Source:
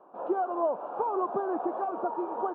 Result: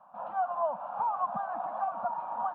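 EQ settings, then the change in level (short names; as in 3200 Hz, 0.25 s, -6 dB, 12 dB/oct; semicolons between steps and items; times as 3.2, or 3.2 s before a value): Chebyshev band-stop 190–760 Hz, order 2; +1.5 dB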